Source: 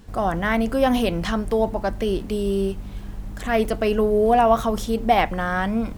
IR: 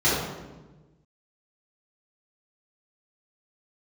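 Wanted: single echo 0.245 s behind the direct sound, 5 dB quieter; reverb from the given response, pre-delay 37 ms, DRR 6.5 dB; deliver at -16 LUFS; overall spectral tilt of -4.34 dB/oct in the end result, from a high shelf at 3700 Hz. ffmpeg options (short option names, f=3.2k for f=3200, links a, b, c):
-filter_complex "[0:a]highshelf=f=3.7k:g=7,aecho=1:1:245:0.562,asplit=2[a][b];[1:a]atrim=start_sample=2205,adelay=37[c];[b][c]afir=irnorm=-1:irlink=0,volume=-24dB[d];[a][d]amix=inputs=2:normalize=0,volume=2.5dB"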